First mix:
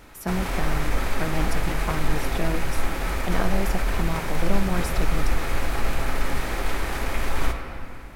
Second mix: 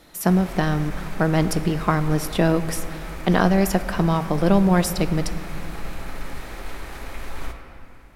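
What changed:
speech +10.0 dB; background -8.0 dB

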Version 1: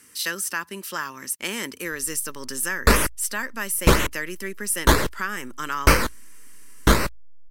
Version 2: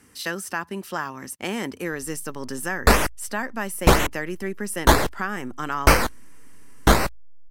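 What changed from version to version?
speech: add tilt -2.5 dB/oct; master: add bell 750 Hz +12 dB 0.35 oct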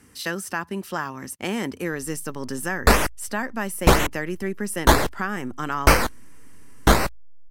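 speech: add low shelf 240 Hz +4.5 dB

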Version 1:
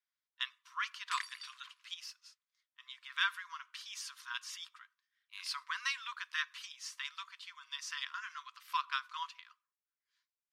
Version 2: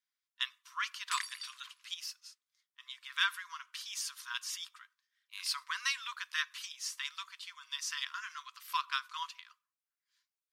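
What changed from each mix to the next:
master: remove LPF 3200 Hz 6 dB/oct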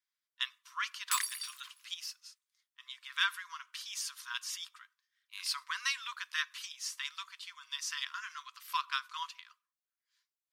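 background: remove air absorption 70 m

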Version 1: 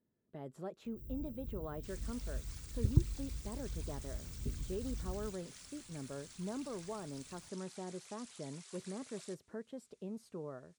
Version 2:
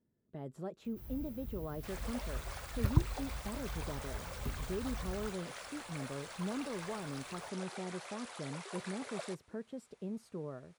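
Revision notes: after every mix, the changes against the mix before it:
speech: add low shelf 230 Hz +6 dB; first sound: remove inverse Chebyshev band-stop 1200–9800 Hz, stop band 50 dB; second sound: remove band-pass 7200 Hz, Q 1.2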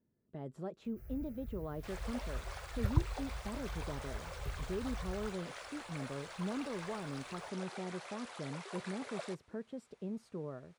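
first sound: add fixed phaser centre 950 Hz, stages 6; master: add high shelf 9400 Hz -11 dB

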